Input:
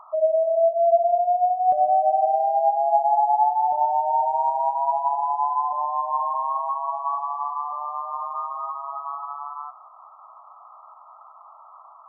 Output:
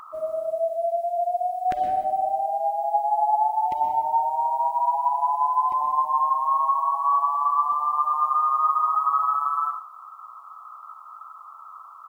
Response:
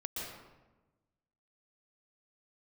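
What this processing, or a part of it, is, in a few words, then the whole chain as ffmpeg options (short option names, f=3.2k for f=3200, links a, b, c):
keyed gated reverb: -filter_complex "[0:a]firequalizer=gain_entry='entry(370,0);entry(600,-22);entry(940,-13);entry(1600,12)':delay=0.05:min_phase=1,asplit=3[a][b][c];[1:a]atrim=start_sample=2205[d];[b][d]afir=irnorm=-1:irlink=0[e];[c]apad=whole_len=537516[f];[e][f]sidechaingate=range=-33dB:threshold=-46dB:ratio=16:detection=peak,volume=-1.5dB[g];[a][g]amix=inputs=2:normalize=0,volume=8.5dB"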